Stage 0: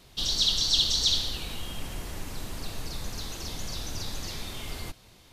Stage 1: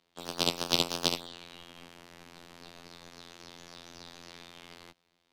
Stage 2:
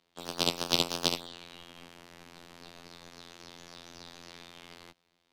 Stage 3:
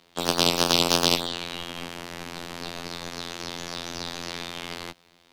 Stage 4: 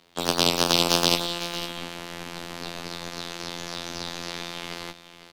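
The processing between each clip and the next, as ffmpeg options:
-filter_complex "[0:a]afftfilt=real='hypot(re,im)*cos(PI*b)':imag='0':win_size=2048:overlap=0.75,aeval=exprs='0.562*(cos(1*acos(clip(val(0)/0.562,-1,1)))-cos(1*PI/2))+0.224*(cos(2*acos(clip(val(0)/0.562,-1,1)))-cos(2*PI/2))+0.282*(cos(4*acos(clip(val(0)/0.562,-1,1)))-cos(4*PI/2))+0.0891*(cos(7*acos(clip(val(0)/0.562,-1,1)))-cos(7*PI/2))':c=same,acrossover=split=160 5100:gain=0.141 1 0.251[s0][s1][s2];[s0][s1][s2]amix=inputs=3:normalize=0,volume=1.41"
-af anull
-af "alimiter=level_in=6.31:limit=0.891:release=50:level=0:latency=1,volume=0.891"
-af "aecho=1:1:505:0.224"

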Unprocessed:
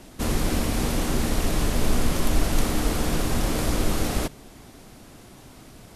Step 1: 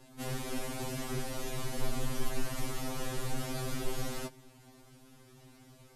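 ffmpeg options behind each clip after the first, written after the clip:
-af "afftfilt=real='re*2.45*eq(mod(b,6),0)':imag='im*2.45*eq(mod(b,6),0)':win_size=2048:overlap=0.75,volume=0.376"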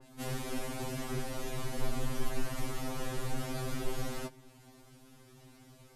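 -af "adynamicequalizer=threshold=0.00126:dfrequency=2800:dqfactor=0.7:tfrequency=2800:tqfactor=0.7:attack=5:release=100:ratio=0.375:range=1.5:mode=cutabove:tftype=highshelf"

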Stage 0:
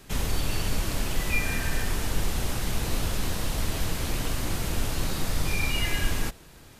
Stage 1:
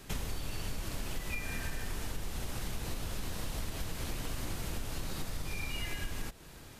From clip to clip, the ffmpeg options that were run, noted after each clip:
-af "acompressor=threshold=0.0251:ratio=6,volume=0.891"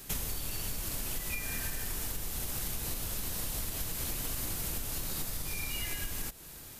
-af "aemphasis=mode=production:type=50fm,volume=0.891"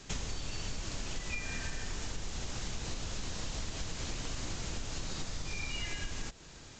-af "aresample=16000,aresample=44100"

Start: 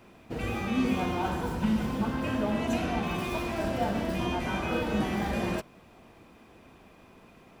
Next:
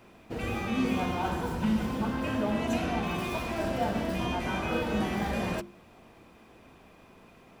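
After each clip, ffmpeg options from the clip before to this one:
-af "bandreject=f=50:t=h:w=6,bandreject=f=100:t=h:w=6,bandreject=f=150:t=h:w=6,bandreject=f=200:t=h:w=6,bandreject=f=250:t=h:w=6,bandreject=f=300:t=h:w=6,bandreject=f=350:t=h:w=6"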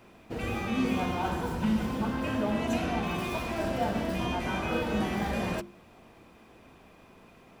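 -af anull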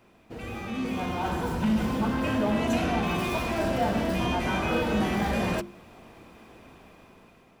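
-af "aeval=exprs='0.141*(cos(1*acos(clip(val(0)/0.141,-1,1)))-cos(1*PI/2))+0.00891*(cos(5*acos(clip(val(0)/0.141,-1,1)))-cos(5*PI/2))':c=same,dynaudnorm=f=460:g=5:m=2.82,volume=0.473"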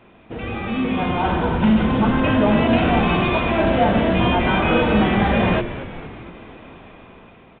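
-filter_complex "[0:a]asplit=7[s0][s1][s2][s3][s4][s5][s6];[s1]adelay=229,afreqshift=-100,volume=0.224[s7];[s2]adelay=458,afreqshift=-200,volume=0.13[s8];[s3]adelay=687,afreqshift=-300,volume=0.075[s9];[s4]adelay=916,afreqshift=-400,volume=0.0437[s10];[s5]adelay=1145,afreqshift=-500,volume=0.0254[s11];[s6]adelay=1374,afreqshift=-600,volume=0.0146[s12];[s0][s7][s8][s9][s10][s11][s12]amix=inputs=7:normalize=0,volume=2.82" -ar 8000 -c:a pcm_alaw

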